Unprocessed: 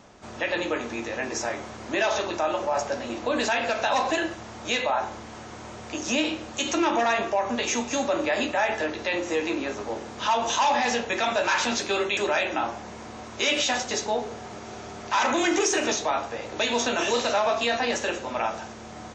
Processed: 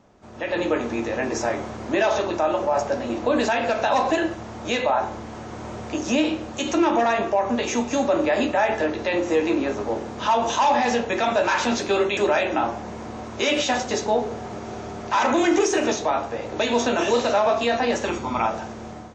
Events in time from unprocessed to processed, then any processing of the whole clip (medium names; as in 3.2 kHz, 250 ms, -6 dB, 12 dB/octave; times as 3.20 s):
18.05–18.46 s: comb 0.9 ms
whole clip: tilt shelf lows +4.5 dB, about 1.2 kHz; level rider gain up to 12 dB; trim -7.5 dB